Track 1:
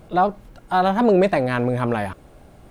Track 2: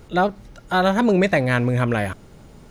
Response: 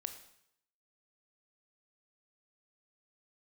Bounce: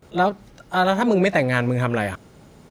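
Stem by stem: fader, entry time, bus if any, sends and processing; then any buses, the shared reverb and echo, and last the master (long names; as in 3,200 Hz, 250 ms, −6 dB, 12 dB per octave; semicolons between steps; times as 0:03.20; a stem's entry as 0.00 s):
−13.0 dB, 0.00 s, no send, no processing
−0.5 dB, 23 ms, no send, no processing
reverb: not used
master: high-pass filter 100 Hz 6 dB per octave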